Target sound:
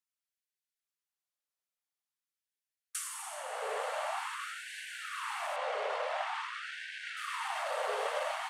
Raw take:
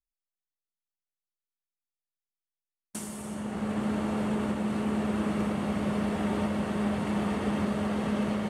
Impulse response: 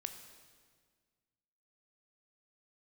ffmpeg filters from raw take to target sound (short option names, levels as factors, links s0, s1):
-filter_complex "[0:a]asplit=2[s0][s1];[1:a]atrim=start_sample=2205,asetrate=26019,aresample=44100,lowshelf=f=170:g=11.5[s2];[s1][s2]afir=irnorm=-1:irlink=0,volume=1.68[s3];[s0][s3]amix=inputs=2:normalize=0,asoftclip=type=hard:threshold=0.224,asettb=1/sr,asplit=3[s4][s5][s6];[s4]atrim=end=5.564[s7];[s5]atrim=start=5.56:end=7.17,asetpts=PTS-STARTPTS,afade=t=in:d=0.004:c=qsin,afade=t=out:st=1.606:d=0.004:c=qsin,lowpass=5200[s8];[s6]atrim=start=7.166[s9];[s7][s8]acrossfade=d=0.004:c1=hsin:c2=qsin[s10];[s10][s9]acrossfade=d=0.004:c1=qsin:c2=hsin,afftfilt=real='re*gte(b*sr/1024,420*pow(1500/420,0.5+0.5*sin(2*PI*0.47*pts/sr)))':imag='im*gte(b*sr/1024,420*pow(1500/420,0.5+0.5*sin(2*PI*0.47*pts/sr)))':win_size=1024:overlap=0.75,volume=0.501"